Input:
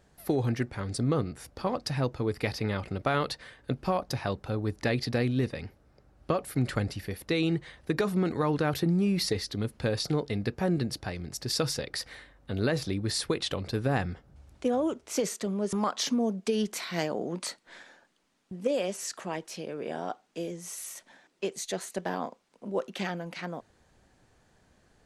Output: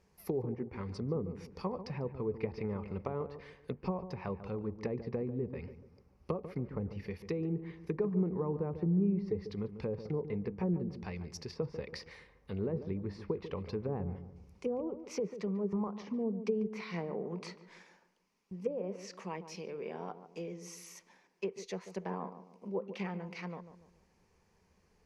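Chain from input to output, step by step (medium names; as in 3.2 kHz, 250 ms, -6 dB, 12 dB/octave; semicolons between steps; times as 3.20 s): low-pass that closes with the level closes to 640 Hz, closed at -24.5 dBFS; rippled EQ curve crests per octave 0.82, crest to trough 9 dB; filtered feedback delay 144 ms, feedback 42%, low-pass 980 Hz, level -10 dB; trim -7.5 dB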